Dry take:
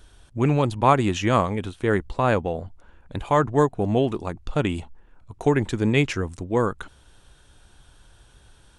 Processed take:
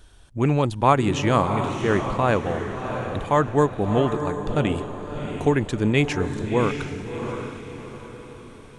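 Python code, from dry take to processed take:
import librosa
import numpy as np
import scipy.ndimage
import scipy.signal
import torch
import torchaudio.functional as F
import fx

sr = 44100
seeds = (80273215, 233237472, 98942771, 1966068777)

y = fx.echo_diffused(x, sr, ms=684, feedback_pct=43, wet_db=-7)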